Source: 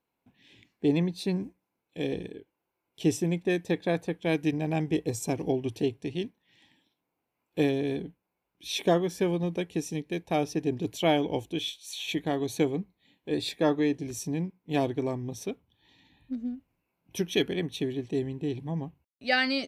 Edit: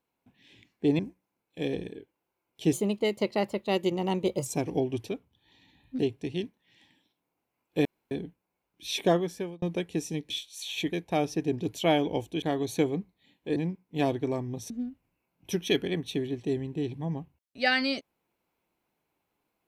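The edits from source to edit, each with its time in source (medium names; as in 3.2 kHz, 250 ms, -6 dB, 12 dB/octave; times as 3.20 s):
0.99–1.38 s: delete
3.12–5.18 s: speed 119%
7.66–7.92 s: room tone
8.97–9.43 s: fade out
11.61–12.23 s: move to 10.11 s
13.37–14.31 s: delete
15.45–16.36 s: move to 5.80 s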